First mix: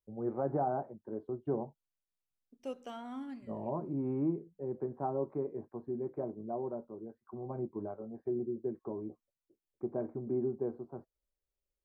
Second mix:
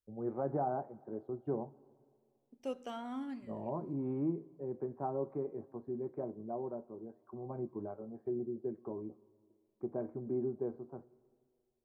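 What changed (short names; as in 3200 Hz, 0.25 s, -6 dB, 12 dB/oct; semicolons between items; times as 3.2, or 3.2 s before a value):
first voice -4.5 dB; reverb: on, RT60 2.2 s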